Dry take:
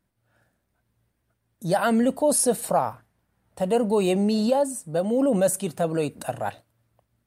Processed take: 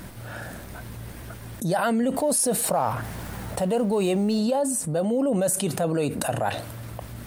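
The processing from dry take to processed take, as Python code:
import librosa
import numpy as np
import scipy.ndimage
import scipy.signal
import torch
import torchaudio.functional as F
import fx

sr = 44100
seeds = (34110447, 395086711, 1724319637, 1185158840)

y = fx.law_mismatch(x, sr, coded='mu', at=(2.14, 4.39))
y = fx.env_flatten(y, sr, amount_pct=70)
y = F.gain(torch.from_numpy(y), -4.5).numpy()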